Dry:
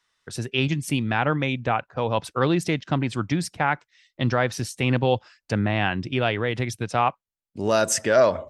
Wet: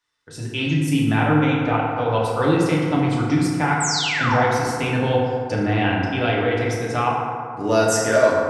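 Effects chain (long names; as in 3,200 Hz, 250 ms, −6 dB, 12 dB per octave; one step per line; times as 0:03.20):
sound drawn into the spectrogram fall, 0:03.80–0:04.40, 640–8,400 Hz −24 dBFS
automatic gain control gain up to 5 dB
feedback delay network reverb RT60 2.3 s, low-frequency decay 0.85×, high-frequency decay 0.4×, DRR −5 dB
level −7.5 dB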